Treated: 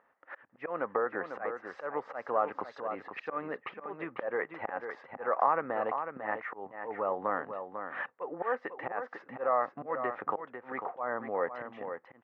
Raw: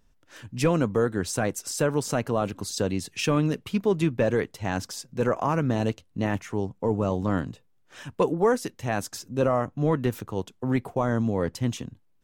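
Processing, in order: slow attack 476 ms; compression 6:1, threshold -31 dBFS, peak gain reduction 11 dB; cabinet simulation 500–2000 Hz, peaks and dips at 530 Hz +6 dB, 800 Hz +8 dB, 1.2 kHz +9 dB, 1.9 kHz +9 dB; on a send: delay 497 ms -8 dB; on the sum: trim +4 dB

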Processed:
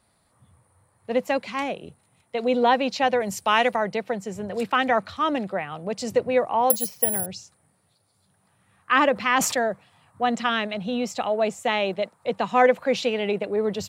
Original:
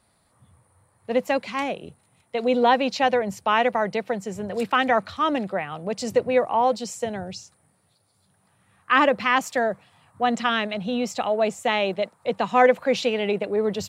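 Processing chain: 3.20–3.76 s: treble shelf 3.3 kHz +11.5 dB; 6.70–7.26 s: careless resampling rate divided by 4×, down filtered, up zero stuff; 9.14–9.62 s: decay stretcher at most 55 dB/s; trim -1 dB

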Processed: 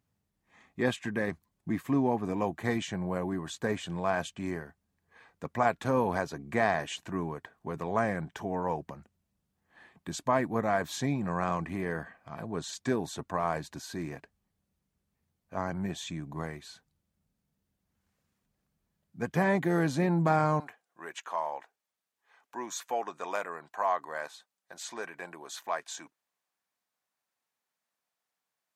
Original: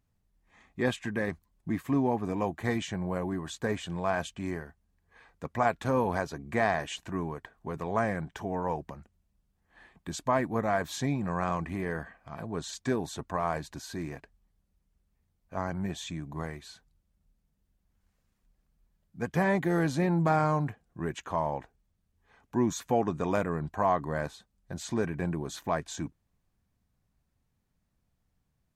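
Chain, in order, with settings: high-pass 100 Hz 12 dB/octave, from 20.60 s 720 Hz

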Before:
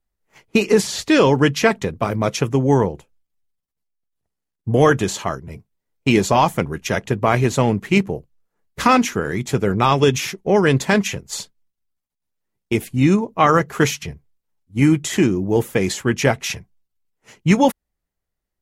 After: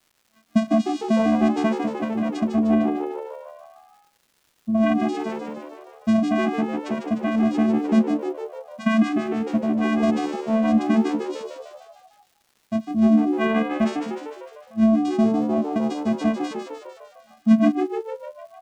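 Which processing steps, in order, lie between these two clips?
vocoder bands 4, square 221 Hz; crackle 270 per s -45 dBFS; on a send: frequency-shifting echo 151 ms, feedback 59%, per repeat +75 Hz, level -7 dB; on the sum: trim -3.5 dB

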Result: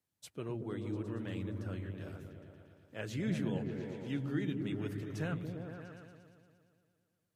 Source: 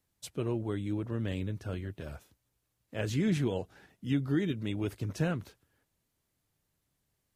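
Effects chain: high-pass 99 Hz; delay with an opening low-pass 116 ms, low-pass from 200 Hz, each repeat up 1 oct, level 0 dB; dynamic bell 1.6 kHz, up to +4 dB, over -54 dBFS, Q 0.97; trim -8 dB

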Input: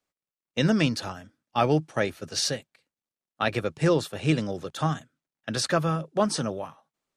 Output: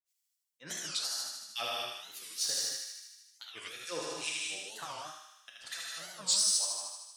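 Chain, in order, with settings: differentiator; in parallel at -1 dB: compression, threshold -43 dBFS, peak gain reduction 16 dB; on the sum: hard clipper -21.5 dBFS, distortion -22 dB; harmonic tremolo 4.8 Hz, depth 100%, crossover 2 kHz; granulator 247 ms, grains 3.4 per s, spray 23 ms, pitch spread up and down by 0 st; on a send: thinning echo 77 ms, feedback 69%, high-pass 690 Hz, level -4 dB; on the sum: gated-style reverb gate 260 ms flat, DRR -3 dB; warped record 45 rpm, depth 250 cents; trim +4 dB

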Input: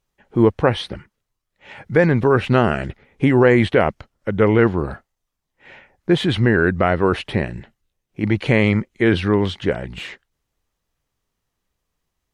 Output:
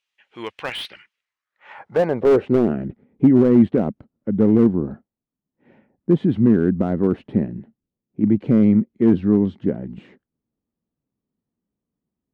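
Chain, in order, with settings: band-pass sweep 2.7 kHz -> 230 Hz, 1.10–2.81 s; tone controls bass 0 dB, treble +4 dB; slew-rate limiter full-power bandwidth 59 Hz; trim +6.5 dB

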